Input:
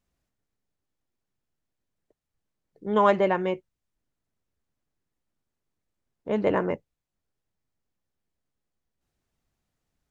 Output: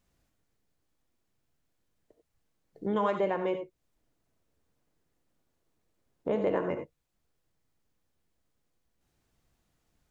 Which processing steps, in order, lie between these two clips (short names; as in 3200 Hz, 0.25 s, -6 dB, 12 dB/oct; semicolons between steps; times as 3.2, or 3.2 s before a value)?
3.15–6.56 bell 490 Hz +4 dB 1.8 oct; compressor 3:1, threshold -35 dBFS, peak gain reduction 15.5 dB; non-linear reverb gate 0.11 s rising, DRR 6 dB; gain +4.5 dB